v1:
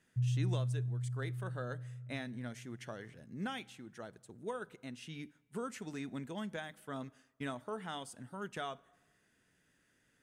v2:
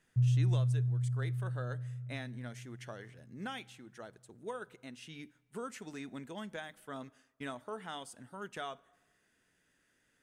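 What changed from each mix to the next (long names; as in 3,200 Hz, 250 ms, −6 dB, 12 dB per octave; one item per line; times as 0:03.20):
background +10.0 dB
master: add parametric band 130 Hz −5 dB 2 octaves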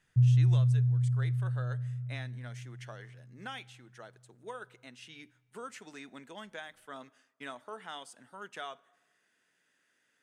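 speech: add meter weighting curve A
master: add parametric band 130 Hz +5 dB 2 octaves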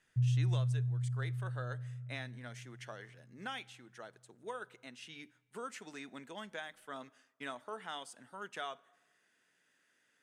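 background −7.5 dB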